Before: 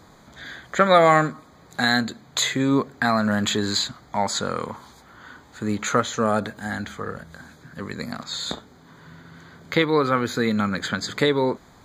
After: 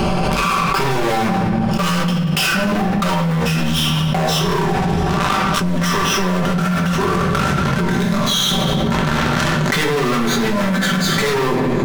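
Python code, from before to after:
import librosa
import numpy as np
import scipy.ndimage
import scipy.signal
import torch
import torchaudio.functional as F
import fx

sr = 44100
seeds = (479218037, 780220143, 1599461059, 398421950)

y = fx.pitch_glide(x, sr, semitones=-6.5, runs='ending unshifted')
y = fx.high_shelf(y, sr, hz=6600.0, db=-7.0)
y = y + 0.65 * np.pad(y, (int(5.2 * sr / 1000.0), 0))[:len(y)]
y = fx.leveller(y, sr, passes=5)
y = 10.0 ** (-16.5 / 20.0) * np.tanh(y / 10.0 ** (-16.5 / 20.0))
y = fx.power_curve(y, sr, exponent=0.7)
y = y + 10.0 ** (-21.0 / 20.0) * np.pad(y, (int(186 * sr / 1000.0), 0))[:len(y)]
y = fx.room_shoebox(y, sr, seeds[0], volume_m3=220.0, walls='mixed', distance_m=1.2)
y = fx.env_flatten(y, sr, amount_pct=100)
y = y * librosa.db_to_amplitude(-9.5)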